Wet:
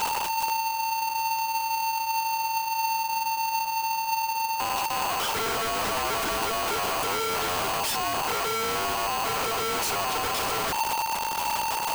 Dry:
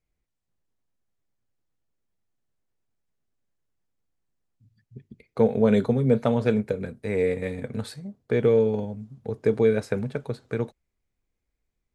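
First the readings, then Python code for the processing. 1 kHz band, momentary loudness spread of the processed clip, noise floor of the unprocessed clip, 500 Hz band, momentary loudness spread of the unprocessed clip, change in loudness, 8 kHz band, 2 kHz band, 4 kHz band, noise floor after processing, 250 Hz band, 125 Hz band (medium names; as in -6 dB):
+18.5 dB, 1 LU, -81 dBFS, -8.0 dB, 14 LU, -1.5 dB, no reading, +11.0 dB, +19.0 dB, -30 dBFS, -13.0 dB, -13.5 dB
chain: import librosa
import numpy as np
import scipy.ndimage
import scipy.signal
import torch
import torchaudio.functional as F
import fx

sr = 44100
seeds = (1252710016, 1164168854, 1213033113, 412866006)

y = np.sign(x) * np.sqrt(np.mean(np.square(x)))
y = fx.dmg_noise_colour(y, sr, seeds[0], colour='brown', level_db=-39.0)
y = y * np.sign(np.sin(2.0 * np.pi * 900.0 * np.arange(len(y)) / sr))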